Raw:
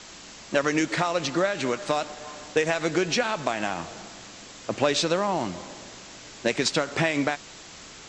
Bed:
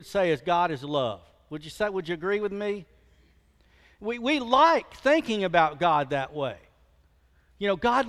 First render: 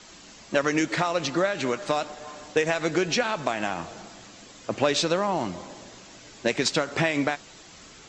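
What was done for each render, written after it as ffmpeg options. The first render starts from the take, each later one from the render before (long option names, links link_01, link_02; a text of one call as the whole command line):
ffmpeg -i in.wav -af "afftdn=noise_reduction=6:noise_floor=-45" out.wav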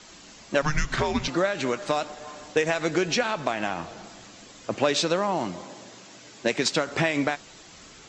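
ffmpeg -i in.wav -filter_complex "[0:a]asettb=1/sr,asplit=3[link_01][link_02][link_03];[link_01]atrim=end=0.624[link_04];[link_02]atrim=start=0.62:end=1.28,asetpts=PTS-STARTPTS,afade=type=in:duration=0.004:curve=qsin,afade=type=out:start_time=0.656:duration=0.004:curve=qsin,afreqshift=-290[link_05];[link_03]atrim=start=1.276[link_06];[link_04][link_05]acrossfade=duration=0.004:curve1=hsin:curve2=qsin[link_07];[link_07][link_06]acrossfade=duration=0.004:curve1=qsin:curve2=hsin,asettb=1/sr,asplit=3[link_08][link_09][link_10];[link_08]atrim=end=3.334[link_11];[link_09]atrim=start=3.33:end=4.03,asetpts=PTS-STARTPTS,afade=type=in:duration=0.004:curve=qsin,afade=type=out:start_time=0.696:duration=0.004:curve=qsin,lowpass=6600[link_12];[link_10]atrim=start=4.026[link_13];[link_11][link_12]acrossfade=duration=0.004:curve1=hsin:curve2=qsin[link_14];[link_14][link_13]acrossfade=duration=0.004:curve1=qsin:curve2=hsin,asettb=1/sr,asplit=3[link_15][link_16][link_17];[link_15]atrim=end=4.764[link_18];[link_16]atrim=start=4.76:end=6.87,asetpts=PTS-STARTPTS,afade=type=in:duration=0.004:curve=qsin,afade=type=out:start_time=2.106:duration=0.004:curve=qsin,highpass=110[link_19];[link_17]atrim=start=6.866[link_20];[link_18][link_19]acrossfade=duration=0.004:curve1=hsin:curve2=qsin[link_21];[link_21][link_20]acrossfade=duration=0.004:curve1=qsin:curve2=hsin" out.wav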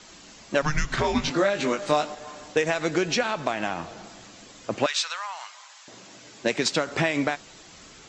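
ffmpeg -i in.wav -filter_complex "[0:a]asettb=1/sr,asplit=3[link_01][link_02][link_03];[link_01]atrim=end=1.024[link_04];[link_02]atrim=start=1.02:end=2.15,asetpts=PTS-STARTPTS,afade=type=in:duration=0.004:curve=qsin,afade=type=out:start_time=1.126:duration=0.004:curve=qsin,asplit=2[link_05][link_06];[link_06]adelay=20,volume=-3dB[link_07];[link_05][link_07]amix=inputs=2:normalize=0,atrim=end_sample=49833[link_08];[link_03]atrim=start=2.146[link_09];[link_04][link_08]acrossfade=duration=0.004:curve1=hsin:curve2=qsin[link_10];[link_10][link_09]acrossfade=duration=0.004:curve1=qsin:curve2=hsin,asettb=1/sr,asplit=3[link_11][link_12][link_13];[link_11]atrim=end=4.864[link_14];[link_12]atrim=start=4.86:end=5.88,asetpts=PTS-STARTPTS,afade=type=in:duration=0.004:curve=qsin,afade=type=out:start_time=1.016:duration=0.004:curve=qsin,highpass=frequency=1100:width=0.5412,highpass=frequency=1100:width=1.3066[link_15];[link_13]atrim=start=5.876[link_16];[link_14][link_15]acrossfade=duration=0.004:curve1=hsin:curve2=qsin[link_17];[link_17][link_16]acrossfade=duration=0.004:curve1=qsin:curve2=hsin" out.wav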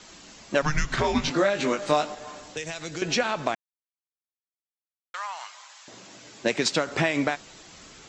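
ffmpeg -i in.wav -filter_complex "[0:a]asettb=1/sr,asplit=3[link_01][link_02][link_03];[link_01]atrim=end=2.404[link_04];[link_02]atrim=start=2.4:end=3.02,asetpts=PTS-STARTPTS,afade=type=in:duration=0.004:curve=qsin,afade=type=out:start_time=0.616:duration=0.004:curve=qsin,acrossover=split=130|3000[link_05][link_06][link_07];[link_06]acompressor=threshold=-44dB:ratio=2:attack=3.2:release=140:knee=2.83:detection=peak[link_08];[link_05][link_08][link_07]amix=inputs=3:normalize=0[link_09];[link_03]atrim=start=3.016[link_10];[link_04][link_09]acrossfade=duration=0.004:curve1=hsin:curve2=qsin[link_11];[link_11][link_10]acrossfade=duration=0.004:curve1=qsin:curve2=hsin,asplit=3[link_12][link_13][link_14];[link_12]atrim=end=3.55,asetpts=PTS-STARTPTS,afade=type=out:start_time=3.546:duration=0.004:curve=hsin[link_15];[link_13]atrim=start=3.55:end=5.14,asetpts=PTS-STARTPTS,volume=0[link_16];[link_14]atrim=start=5.14,asetpts=PTS-STARTPTS,afade=type=in:duration=0.004:curve=hsin[link_17];[link_15][link_16][link_17]concat=n=3:v=0:a=1" out.wav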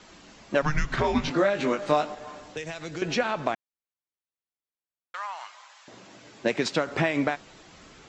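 ffmpeg -i in.wav -af "highshelf=frequency=4600:gain=-12" out.wav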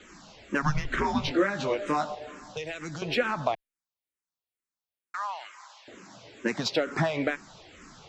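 ffmpeg -i in.wav -filter_complex "[0:a]asplit=2[link_01][link_02];[link_02]asoftclip=type=tanh:threshold=-26.5dB,volume=-8dB[link_03];[link_01][link_03]amix=inputs=2:normalize=0,asplit=2[link_04][link_05];[link_05]afreqshift=-2.2[link_06];[link_04][link_06]amix=inputs=2:normalize=1" out.wav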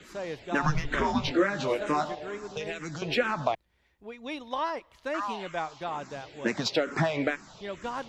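ffmpeg -i in.wav -i bed.wav -filter_complex "[1:a]volume=-12dB[link_01];[0:a][link_01]amix=inputs=2:normalize=0" out.wav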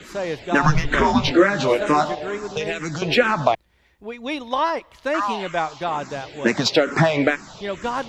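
ffmpeg -i in.wav -af "volume=9.5dB" out.wav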